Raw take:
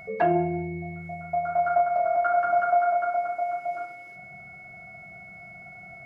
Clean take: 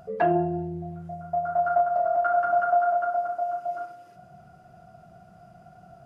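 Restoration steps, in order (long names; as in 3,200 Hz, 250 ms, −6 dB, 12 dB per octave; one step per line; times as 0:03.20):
notch filter 2,200 Hz, Q 30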